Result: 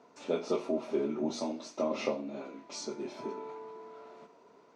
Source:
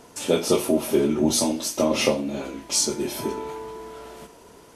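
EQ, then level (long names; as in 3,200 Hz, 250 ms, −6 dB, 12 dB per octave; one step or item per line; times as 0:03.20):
loudspeaker in its box 300–5,600 Hz, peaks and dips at 330 Hz −6 dB, 510 Hz −5 dB, 840 Hz −4 dB, 1,700 Hz −6 dB, 3,100 Hz −8 dB, 5,100 Hz −4 dB
high-shelf EQ 2,100 Hz −10 dB
−5.0 dB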